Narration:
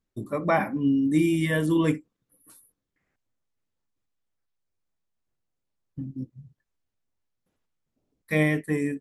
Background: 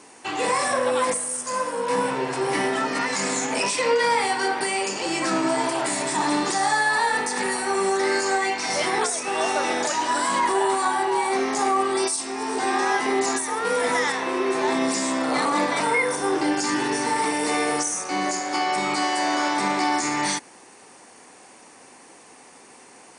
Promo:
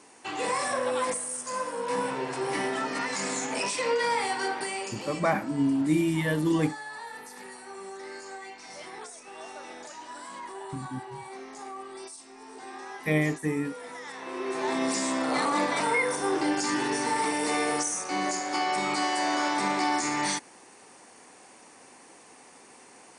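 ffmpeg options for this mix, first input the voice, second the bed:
-filter_complex "[0:a]adelay=4750,volume=0.75[s0];[1:a]volume=2.82,afade=t=out:st=4.45:d=0.93:silence=0.223872,afade=t=in:st=14.03:d=0.91:silence=0.177828[s1];[s0][s1]amix=inputs=2:normalize=0"

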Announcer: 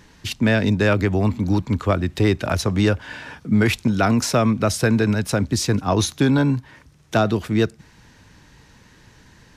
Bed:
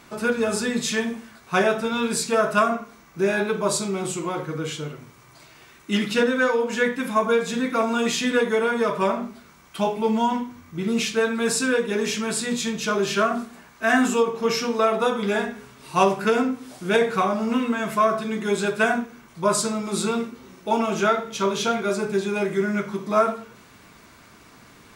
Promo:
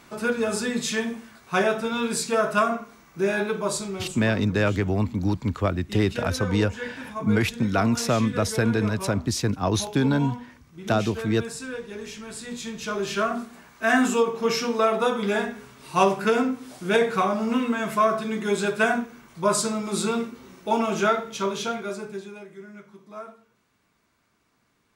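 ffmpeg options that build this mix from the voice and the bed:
-filter_complex "[0:a]adelay=3750,volume=0.596[s0];[1:a]volume=2.99,afade=t=out:st=3.45:d=0.95:silence=0.298538,afade=t=in:st=12.3:d=1.43:silence=0.266073,afade=t=out:st=21.06:d=1.39:silence=0.11885[s1];[s0][s1]amix=inputs=2:normalize=0"

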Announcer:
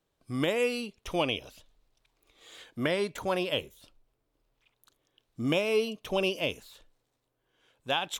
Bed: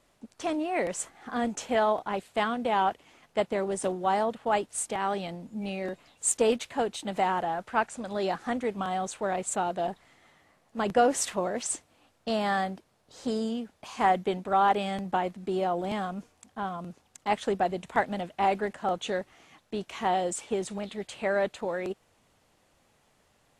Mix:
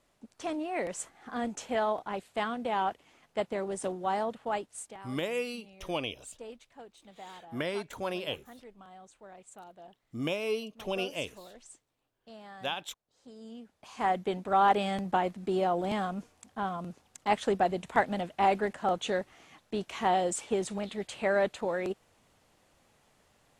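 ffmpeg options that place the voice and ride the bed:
-filter_complex "[0:a]adelay=4750,volume=0.562[s0];[1:a]volume=6.68,afade=t=out:st=4.38:d=0.7:silence=0.149624,afade=t=in:st=13.36:d=1.37:silence=0.0891251[s1];[s0][s1]amix=inputs=2:normalize=0"

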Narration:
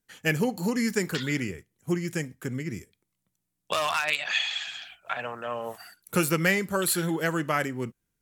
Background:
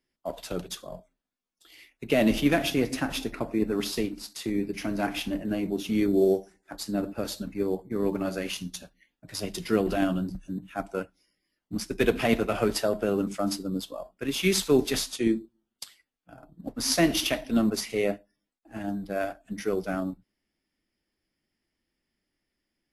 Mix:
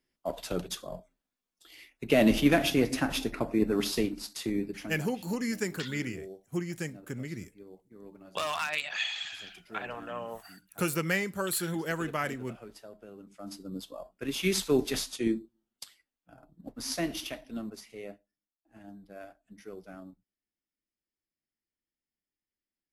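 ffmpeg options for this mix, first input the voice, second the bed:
-filter_complex "[0:a]adelay=4650,volume=0.531[s0];[1:a]volume=8.41,afade=t=out:st=4.35:d=0.72:silence=0.0749894,afade=t=in:st=13.31:d=0.78:silence=0.11885,afade=t=out:st=15.77:d=2.01:silence=0.237137[s1];[s0][s1]amix=inputs=2:normalize=0"

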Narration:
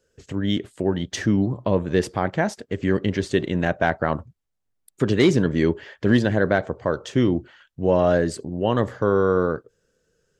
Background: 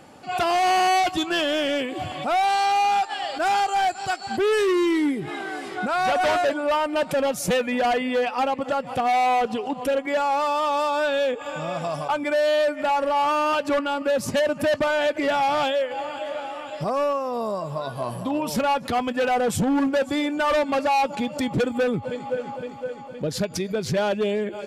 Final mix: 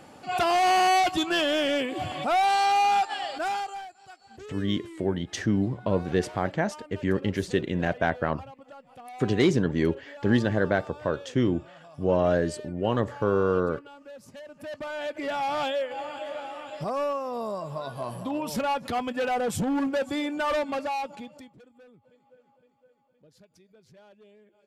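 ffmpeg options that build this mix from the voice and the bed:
-filter_complex "[0:a]adelay=4200,volume=0.596[s0];[1:a]volume=6.31,afade=t=out:st=3.05:d=0.83:silence=0.0891251,afade=t=in:st=14.5:d=1.2:silence=0.133352,afade=t=out:st=20.52:d=1.01:silence=0.0473151[s1];[s0][s1]amix=inputs=2:normalize=0"

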